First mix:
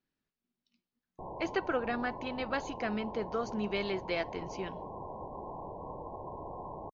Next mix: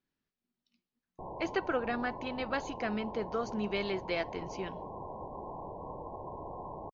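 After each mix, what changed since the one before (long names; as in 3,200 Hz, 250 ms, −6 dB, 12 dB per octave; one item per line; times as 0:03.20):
nothing changed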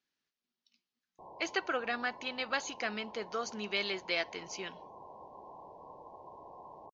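background −6.0 dB
master: add spectral tilt +3.5 dB per octave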